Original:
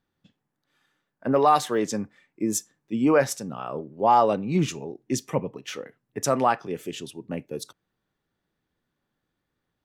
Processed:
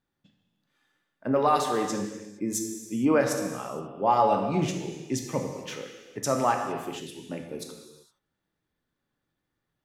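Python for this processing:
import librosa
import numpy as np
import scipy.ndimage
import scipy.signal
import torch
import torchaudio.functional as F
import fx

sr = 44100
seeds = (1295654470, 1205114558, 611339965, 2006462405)

y = fx.rev_gated(x, sr, seeds[0], gate_ms=490, shape='falling', drr_db=2.5)
y = y * 10.0 ** (-4.0 / 20.0)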